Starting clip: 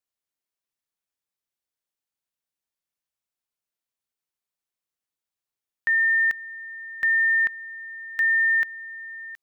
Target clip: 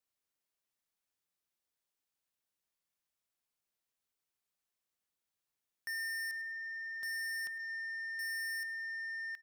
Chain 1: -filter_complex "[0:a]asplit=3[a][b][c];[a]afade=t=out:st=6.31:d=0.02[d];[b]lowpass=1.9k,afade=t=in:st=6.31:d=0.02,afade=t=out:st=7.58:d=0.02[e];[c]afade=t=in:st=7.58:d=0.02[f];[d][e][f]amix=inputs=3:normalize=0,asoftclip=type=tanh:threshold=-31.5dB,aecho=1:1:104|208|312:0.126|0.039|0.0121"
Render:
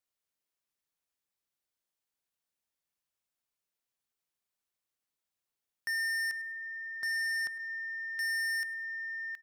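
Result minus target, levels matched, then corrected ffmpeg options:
soft clip: distortion -4 dB
-filter_complex "[0:a]asplit=3[a][b][c];[a]afade=t=out:st=6.31:d=0.02[d];[b]lowpass=1.9k,afade=t=in:st=6.31:d=0.02,afade=t=out:st=7.58:d=0.02[e];[c]afade=t=in:st=7.58:d=0.02[f];[d][e][f]amix=inputs=3:normalize=0,asoftclip=type=tanh:threshold=-38dB,aecho=1:1:104|208|312:0.126|0.039|0.0121"

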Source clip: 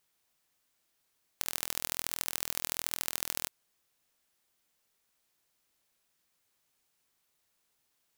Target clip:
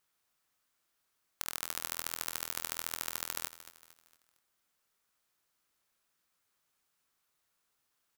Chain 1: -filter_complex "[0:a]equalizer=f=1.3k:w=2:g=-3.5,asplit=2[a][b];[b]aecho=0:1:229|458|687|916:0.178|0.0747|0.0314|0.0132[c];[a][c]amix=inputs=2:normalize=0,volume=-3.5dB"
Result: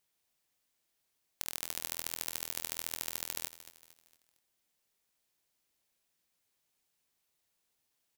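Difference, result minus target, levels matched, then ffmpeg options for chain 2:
1000 Hz band -5.0 dB
-filter_complex "[0:a]equalizer=f=1.3k:w=2:g=6,asplit=2[a][b];[b]aecho=0:1:229|458|687|916:0.178|0.0747|0.0314|0.0132[c];[a][c]amix=inputs=2:normalize=0,volume=-3.5dB"

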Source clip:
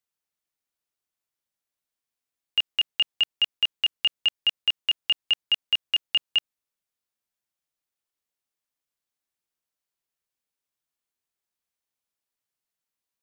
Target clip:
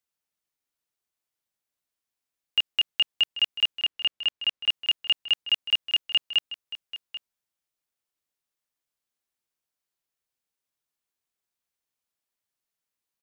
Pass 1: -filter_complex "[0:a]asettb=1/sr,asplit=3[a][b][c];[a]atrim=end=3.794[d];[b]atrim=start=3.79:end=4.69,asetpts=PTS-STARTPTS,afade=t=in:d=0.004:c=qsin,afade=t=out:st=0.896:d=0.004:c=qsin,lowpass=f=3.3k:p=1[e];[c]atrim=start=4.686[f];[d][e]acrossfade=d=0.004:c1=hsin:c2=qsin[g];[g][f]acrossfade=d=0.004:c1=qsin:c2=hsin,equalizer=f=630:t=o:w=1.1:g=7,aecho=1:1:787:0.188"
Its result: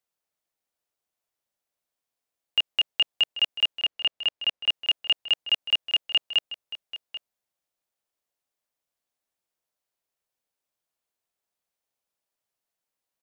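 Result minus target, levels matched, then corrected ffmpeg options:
500 Hz band +5.5 dB
-filter_complex "[0:a]asettb=1/sr,asplit=3[a][b][c];[a]atrim=end=3.794[d];[b]atrim=start=3.79:end=4.69,asetpts=PTS-STARTPTS,afade=t=in:d=0.004:c=qsin,afade=t=out:st=0.896:d=0.004:c=qsin,lowpass=f=3.3k:p=1[e];[c]atrim=start=4.686[f];[d][e]acrossfade=d=0.004:c1=hsin:c2=qsin[g];[g][f]acrossfade=d=0.004:c1=qsin:c2=hsin,aecho=1:1:787:0.188"

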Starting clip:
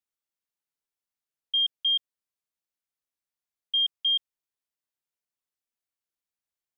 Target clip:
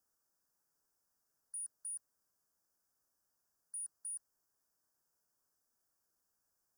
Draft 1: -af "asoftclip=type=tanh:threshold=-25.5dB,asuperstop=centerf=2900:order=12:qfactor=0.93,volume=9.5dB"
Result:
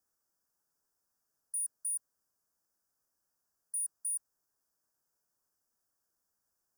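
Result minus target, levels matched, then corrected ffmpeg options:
soft clip: distortion +12 dB
-af "asoftclip=type=tanh:threshold=-17.5dB,asuperstop=centerf=2900:order=12:qfactor=0.93,volume=9.5dB"

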